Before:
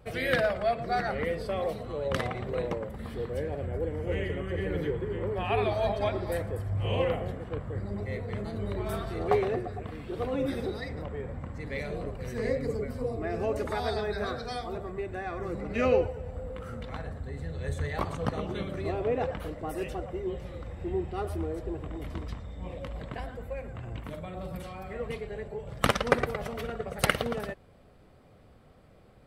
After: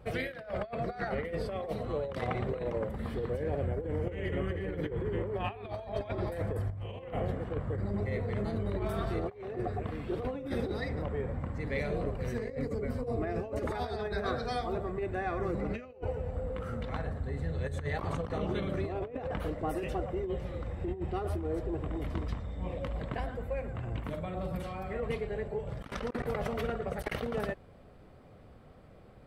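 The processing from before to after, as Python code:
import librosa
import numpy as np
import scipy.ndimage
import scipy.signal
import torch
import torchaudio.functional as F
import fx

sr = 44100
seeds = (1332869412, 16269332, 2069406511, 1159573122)

y = fx.high_shelf(x, sr, hz=3300.0, db=-6.5)
y = fx.over_compress(y, sr, threshold_db=-33.0, ratio=-0.5)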